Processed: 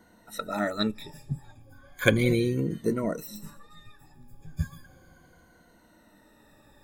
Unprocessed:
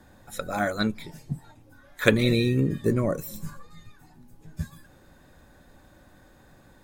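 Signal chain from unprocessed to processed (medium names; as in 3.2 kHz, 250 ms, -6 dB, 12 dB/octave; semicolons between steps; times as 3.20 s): drifting ripple filter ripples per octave 1.9, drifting -0.35 Hz, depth 17 dB; trim -4.5 dB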